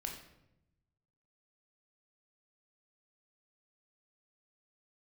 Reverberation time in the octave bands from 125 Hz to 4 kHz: 1.6, 1.2, 0.95, 0.75, 0.70, 0.60 seconds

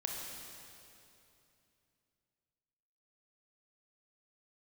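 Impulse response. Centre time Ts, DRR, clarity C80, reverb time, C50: 119 ms, −1.0 dB, 2.0 dB, 2.8 s, 0.5 dB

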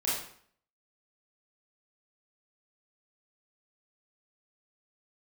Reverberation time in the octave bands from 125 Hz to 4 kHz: 0.55, 0.60, 0.55, 0.60, 0.55, 0.50 seconds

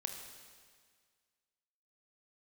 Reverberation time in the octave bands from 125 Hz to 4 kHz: 1.8, 1.8, 1.8, 1.8, 1.8, 1.8 seconds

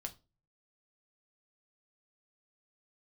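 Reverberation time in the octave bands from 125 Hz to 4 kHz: 0.65, 0.40, 0.35, 0.25, 0.25, 0.25 seconds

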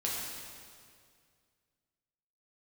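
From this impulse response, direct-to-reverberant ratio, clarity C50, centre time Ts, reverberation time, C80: −5.0 dB, −1.0 dB, 113 ms, 2.1 s, 1.0 dB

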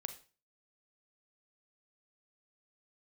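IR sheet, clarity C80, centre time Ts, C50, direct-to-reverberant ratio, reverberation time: 16.5 dB, 8 ms, 12.0 dB, 8.5 dB, 0.35 s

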